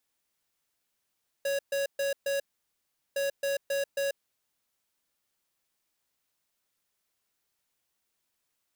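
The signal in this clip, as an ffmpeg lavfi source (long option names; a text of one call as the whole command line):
ffmpeg -f lavfi -i "aevalsrc='0.0355*(2*lt(mod(556*t,1),0.5)-1)*clip(min(mod(mod(t,1.71),0.27),0.14-mod(mod(t,1.71),0.27))/0.005,0,1)*lt(mod(t,1.71),1.08)':duration=3.42:sample_rate=44100" out.wav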